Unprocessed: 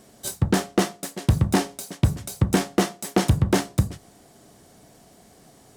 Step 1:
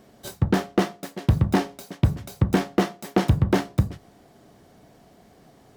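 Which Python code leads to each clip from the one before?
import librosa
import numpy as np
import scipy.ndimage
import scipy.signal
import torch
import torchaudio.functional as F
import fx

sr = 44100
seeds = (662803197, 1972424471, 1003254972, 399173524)

y = fx.peak_eq(x, sr, hz=8900.0, db=-12.5, octaves=1.5)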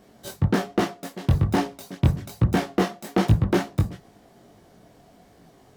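y = fx.chorus_voices(x, sr, voices=2, hz=1.2, base_ms=20, depth_ms=3.0, mix_pct=45)
y = y * librosa.db_to_amplitude(3.0)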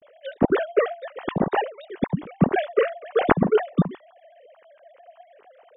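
y = fx.sine_speech(x, sr)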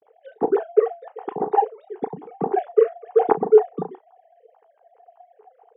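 y = fx.double_bandpass(x, sr, hz=590.0, octaves=0.83)
y = fx.doubler(y, sr, ms=35.0, db=-13.0)
y = y * librosa.db_to_amplitude(7.0)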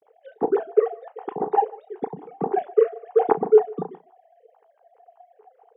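y = x + 10.0 ** (-23.0 / 20.0) * np.pad(x, (int(150 * sr / 1000.0), 0))[:len(x)]
y = y * librosa.db_to_amplitude(-1.5)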